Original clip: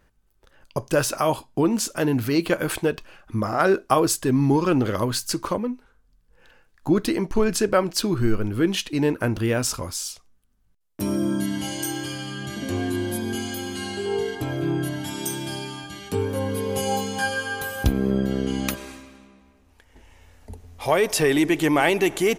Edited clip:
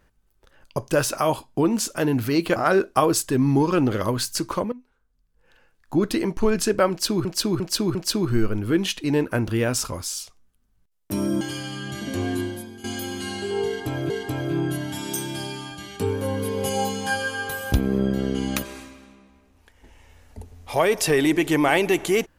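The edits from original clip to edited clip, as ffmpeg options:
ffmpeg -i in.wav -filter_complex "[0:a]asplit=9[link_01][link_02][link_03][link_04][link_05][link_06][link_07][link_08][link_09];[link_01]atrim=end=2.562[link_10];[link_02]atrim=start=3.498:end=5.66,asetpts=PTS-STARTPTS,afade=type=out:start_time=2.158:duration=0.004:curve=hsin:silence=0.177828[link_11];[link_03]atrim=start=5.66:end=8.192,asetpts=PTS-STARTPTS,afade=type=in:duration=1.49:silence=0.177828[link_12];[link_04]atrim=start=7.838:end=8.192[link_13];[link_05]atrim=start=7.838:end=8.192[link_14];[link_06]atrim=start=7.838:end=11.302[link_15];[link_07]atrim=start=11.958:end=13.39,asetpts=PTS-STARTPTS,afade=type=out:start_time=0.982:duration=0.45:curve=qua:silence=0.16788[link_16];[link_08]atrim=start=13.39:end=14.652,asetpts=PTS-STARTPTS,afade=type=in:duration=0.004:curve=hsin:silence=0.16788[link_17];[link_09]atrim=start=14.218[link_18];[link_11][link_12]concat=n=2:v=0:a=1[link_19];[link_10][link_19]acrossfade=duration=0.004:curve1=hsin:curve2=hsin[link_20];[link_20][link_13]acrossfade=duration=0.004:curve1=hsin:curve2=hsin[link_21];[link_21][link_14]acrossfade=duration=0.004:curve1=hsin:curve2=hsin[link_22];[link_22][link_15]acrossfade=duration=0.004:curve1=hsin:curve2=hsin[link_23];[link_16][link_17]concat=n=2:v=0:a=1[link_24];[link_23][link_24]acrossfade=duration=0.004:curve1=hsin:curve2=hsin[link_25];[link_25][link_18]acrossfade=duration=0.004:curve1=hsin:curve2=hsin" out.wav

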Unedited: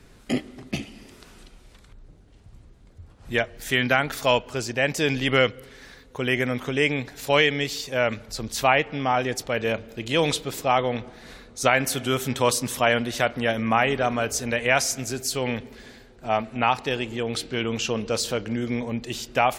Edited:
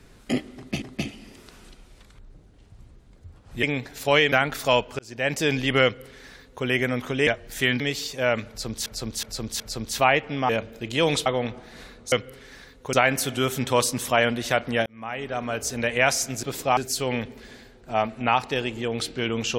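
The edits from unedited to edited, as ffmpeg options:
ffmpeg -i in.wav -filter_complex "[0:a]asplit=17[link_01][link_02][link_03][link_04][link_05][link_06][link_07][link_08][link_09][link_10][link_11][link_12][link_13][link_14][link_15][link_16][link_17];[link_01]atrim=end=0.822[link_18];[link_02]atrim=start=0.558:end=3.372[link_19];[link_03]atrim=start=6.848:end=7.542[link_20];[link_04]atrim=start=3.898:end=4.57,asetpts=PTS-STARTPTS,afade=type=out:start_time=0.668:duration=0.004:curve=hsin[link_21];[link_05]atrim=start=4.57:end=6.852,asetpts=PTS-STARTPTS,afade=type=in:duration=0.34[link_22];[link_06]atrim=start=3.368:end=3.902[link_23];[link_07]atrim=start=7.538:end=8.602[link_24];[link_08]atrim=start=8.228:end=8.602[link_25];[link_09]atrim=start=8.228:end=8.602[link_26];[link_10]atrim=start=8.228:end=9.122[link_27];[link_11]atrim=start=9.648:end=10.422[link_28];[link_12]atrim=start=10.758:end=11.622[link_29];[link_13]atrim=start=5.418:end=6.232[link_30];[link_14]atrim=start=11.618:end=13.55,asetpts=PTS-STARTPTS,afade=type=out:start_time=1.928:duration=0.004:curve=hsin[link_31];[link_15]atrim=start=13.55:end=15.122,asetpts=PTS-STARTPTS,afade=type=in:duration=0.99[link_32];[link_16]atrim=start=10.418:end=10.762[link_33];[link_17]atrim=start=15.118[link_34];[link_18][link_19]acrossfade=duration=0.004:curve1=hsin:curve2=hsin[link_35];[link_35][link_20]acrossfade=duration=0.004:curve1=hsin:curve2=hsin[link_36];[link_21][link_22]concat=n=2:v=0:a=1[link_37];[link_36][link_37]acrossfade=duration=0.004:curve1=hsin:curve2=hsin[link_38];[link_38][link_23]acrossfade=duration=0.004:curve1=hsin:curve2=hsin[link_39];[link_39][link_24]acrossfade=duration=0.004:curve1=hsin:curve2=hsin[link_40];[link_40][link_25]acrossfade=duration=0.004:curve1=hsin:curve2=hsin[link_41];[link_41][link_26]acrossfade=duration=0.004:curve1=hsin:curve2=hsin[link_42];[link_42][link_27]acrossfade=duration=0.004:curve1=hsin:curve2=hsin[link_43];[link_43][link_28]acrossfade=duration=0.004:curve1=hsin:curve2=hsin[link_44];[link_44][link_29]acrossfade=duration=0.004:curve1=hsin:curve2=hsin[link_45];[link_45][link_30]acrossfade=duration=0.004:curve1=hsin:curve2=hsin[link_46];[link_31][link_32]concat=n=2:v=0:a=1[link_47];[link_46][link_47]acrossfade=duration=0.004:curve1=hsin:curve2=hsin[link_48];[link_48][link_33]acrossfade=duration=0.004:curve1=hsin:curve2=hsin[link_49];[link_49][link_34]acrossfade=duration=0.004:curve1=hsin:curve2=hsin" out.wav

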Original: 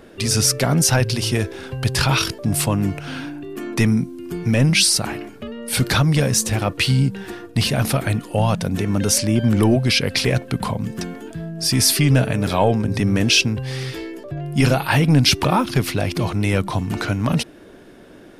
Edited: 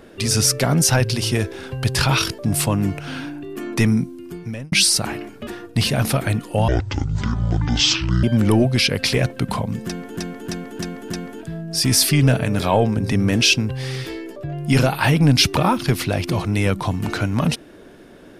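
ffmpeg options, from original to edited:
ffmpeg -i in.wav -filter_complex "[0:a]asplit=9[link_01][link_02][link_03][link_04][link_05][link_06][link_07][link_08][link_09];[link_01]atrim=end=4.72,asetpts=PTS-STARTPTS,afade=type=out:start_time=4.01:duration=0.71[link_10];[link_02]atrim=start=4.72:end=5.472,asetpts=PTS-STARTPTS,afade=type=in:duration=0.004:curve=hsin[link_11];[link_03]atrim=start=7.268:end=8.484[link_12];[link_04]atrim=start=8.48:end=9.35,asetpts=PTS-STARTPTS,asetrate=24696,aresample=44100,atrim=end_sample=68512,asetpts=PTS-STARTPTS[link_13];[link_05]atrim=start=9.346:end=11.292[link_14];[link_06]atrim=start=10.978:end=11.292[link_15];[link_07]atrim=start=10.978:end=11.292[link_16];[link_08]atrim=start=10.978:end=11.292[link_17];[link_09]atrim=start=10.978[link_18];[link_10][link_11]concat=n=2:v=0:a=1[link_19];[link_19][link_12]acrossfade=duration=0.004:curve1=hsin:curve2=hsin[link_20];[link_20][link_13]acrossfade=duration=0.004:curve1=hsin:curve2=hsin[link_21];[link_21][link_14]acrossfade=duration=0.004:curve1=hsin:curve2=hsin[link_22];[link_22][link_15]acrossfade=duration=0.004:curve1=hsin:curve2=hsin[link_23];[link_23][link_16]acrossfade=duration=0.004:curve1=hsin:curve2=hsin[link_24];[link_24][link_17]acrossfade=duration=0.004:curve1=hsin:curve2=hsin[link_25];[link_25][link_18]acrossfade=duration=0.004:curve1=hsin:curve2=hsin" out.wav

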